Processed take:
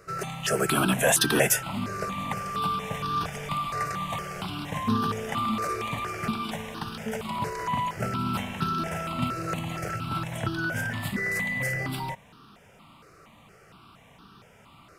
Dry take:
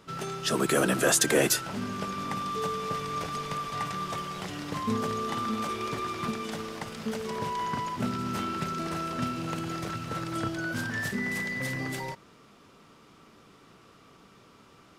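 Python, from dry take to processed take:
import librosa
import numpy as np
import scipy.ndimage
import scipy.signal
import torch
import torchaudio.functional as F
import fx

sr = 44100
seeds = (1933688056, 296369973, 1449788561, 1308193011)

y = fx.phaser_held(x, sr, hz=4.3, low_hz=900.0, high_hz=2100.0)
y = y * 10.0 ** (6.0 / 20.0)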